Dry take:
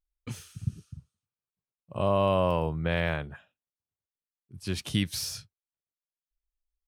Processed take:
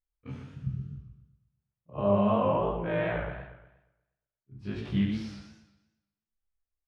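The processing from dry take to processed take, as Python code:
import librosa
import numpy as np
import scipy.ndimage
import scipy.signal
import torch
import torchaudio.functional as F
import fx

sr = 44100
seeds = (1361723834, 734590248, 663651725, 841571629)

p1 = fx.frame_reverse(x, sr, frame_ms=60.0)
p2 = scipy.signal.sosfilt(scipy.signal.butter(2, 1800.0, 'lowpass', fs=sr, output='sos'), p1)
p3 = p2 + fx.room_early_taps(p2, sr, ms=(15, 70), db=(-3.5, -4.5), dry=0)
y = fx.echo_warbled(p3, sr, ms=119, feedback_pct=43, rate_hz=2.8, cents=150, wet_db=-6.0)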